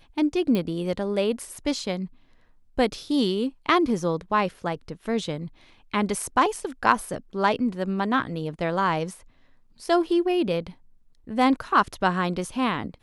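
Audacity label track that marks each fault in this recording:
0.550000	0.550000	pop -15 dBFS

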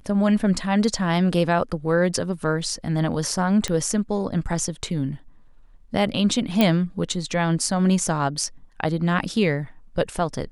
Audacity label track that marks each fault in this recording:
3.680000	3.680000	pop -12 dBFS
6.610000	6.610000	pop -5 dBFS

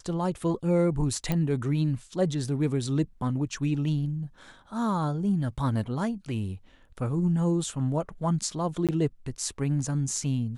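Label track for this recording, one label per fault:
1.320000	1.320000	pop -14 dBFS
8.870000	8.890000	gap 17 ms

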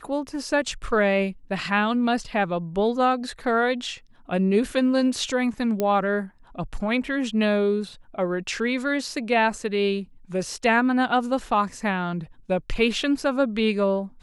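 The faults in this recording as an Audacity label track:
5.800000	5.800000	pop -11 dBFS

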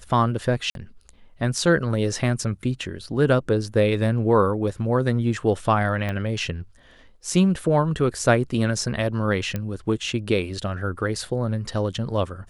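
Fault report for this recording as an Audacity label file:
0.700000	0.750000	gap 52 ms
6.090000	6.090000	pop -16 dBFS
9.560000	9.560000	pop -14 dBFS

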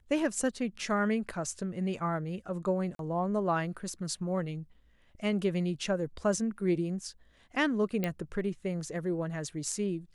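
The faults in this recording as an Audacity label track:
2.950000	2.990000	gap 42 ms
8.040000	8.040000	pop -17 dBFS

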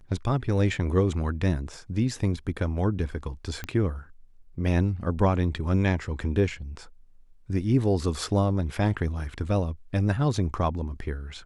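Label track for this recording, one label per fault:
3.640000	3.640000	pop -18 dBFS

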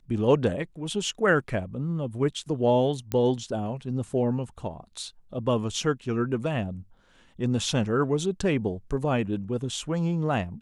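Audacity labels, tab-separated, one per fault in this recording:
3.120000	3.120000	pop -14 dBFS

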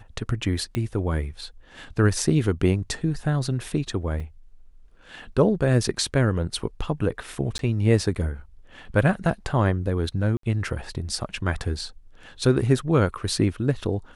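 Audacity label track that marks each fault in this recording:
0.750000	0.750000	pop -14 dBFS
4.200000	4.200000	gap 2.6 ms
7.580000	7.590000	gap 12 ms
10.370000	10.430000	gap 63 ms

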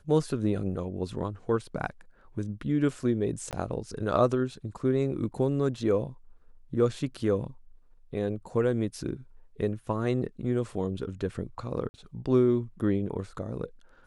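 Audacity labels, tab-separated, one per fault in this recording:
3.510000	3.530000	gap 18 ms
11.890000	11.940000	gap 50 ms

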